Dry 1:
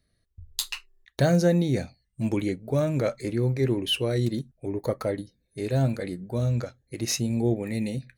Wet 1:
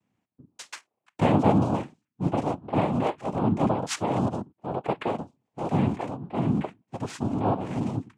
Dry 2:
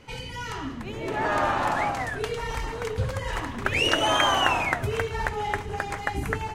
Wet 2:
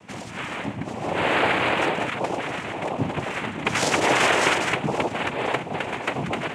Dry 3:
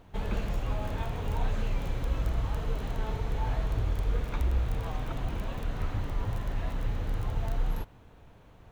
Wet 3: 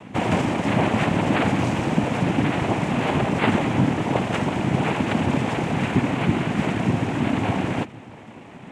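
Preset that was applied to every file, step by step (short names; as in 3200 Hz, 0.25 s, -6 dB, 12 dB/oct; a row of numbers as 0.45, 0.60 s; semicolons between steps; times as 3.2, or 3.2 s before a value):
LPF 2200 Hz 12 dB/oct; noise vocoder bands 4; normalise peaks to -6 dBFS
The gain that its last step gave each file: 0.0, +4.0, +16.5 dB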